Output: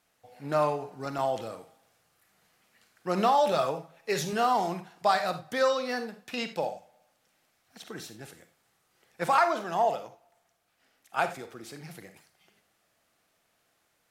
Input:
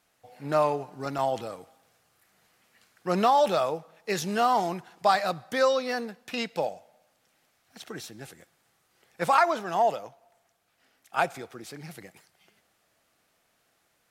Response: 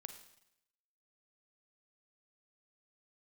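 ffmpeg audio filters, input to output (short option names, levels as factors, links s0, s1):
-filter_complex "[0:a]asettb=1/sr,asplit=3[s0][s1][s2];[s0]atrim=end=3.514[s3];[s1]atrim=start=3.51:end=4.33,asetpts=PTS-STARTPTS,afade=t=in:d=0.004:c=qsin,afade=t=out:st=0.816:d=0.004:c=qsin,aecho=1:1:7.3:0.58,atrim=end_sample=36162[s4];[s2]atrim=start=4.326[s5];[s3][s4]acrossfade=d=0.004:c1=hsin:c2=qsin[s6];[s6][s5]acrossfade=d=0.004:c1=qsin:c2=hsin[s7];[1:a]atrim=start_sample=2205,atrim=end_sample=4410[s8];[s7][s8]afir=irnorm=-1:irlink=0,volume=1.5"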